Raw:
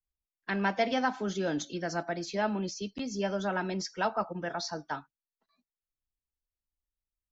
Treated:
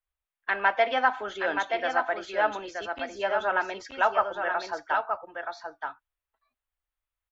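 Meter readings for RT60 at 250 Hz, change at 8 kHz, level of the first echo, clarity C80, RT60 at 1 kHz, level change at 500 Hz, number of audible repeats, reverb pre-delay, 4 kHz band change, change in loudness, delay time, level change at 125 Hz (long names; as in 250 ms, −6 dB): no reverb audible, can't be measured, −5.5 dB, no reverb audible, no reverb audible, +4.5 dB, 1, no reverb audible, +1.5 dB, +4.5 dB, 925 ms, below −15 dB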